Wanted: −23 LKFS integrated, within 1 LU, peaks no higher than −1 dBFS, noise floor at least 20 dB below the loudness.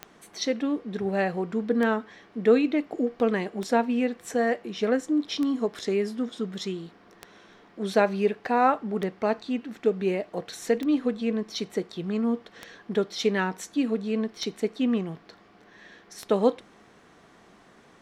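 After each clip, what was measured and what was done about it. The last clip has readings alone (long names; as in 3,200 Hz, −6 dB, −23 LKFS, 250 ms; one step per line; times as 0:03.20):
number of clicks 10; integrated loudness −27.0 LKFS; sample peak −7.5 dBFS; target loudness −23.0 LKFS
→ click removal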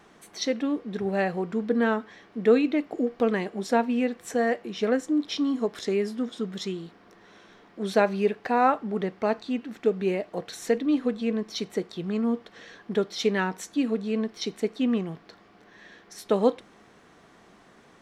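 number of clicks 0; integrated loudness −27.0 LKFS; sample peak −7.5 dBFS; target loudness −23.0 LKFS
→ level +4 dB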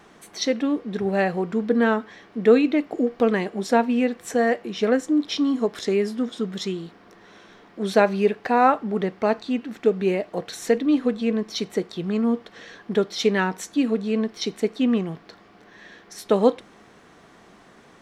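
integrated loudness −23.0 LKFS; sample peak −3.5 dBFS; background noise floor −52 dBFS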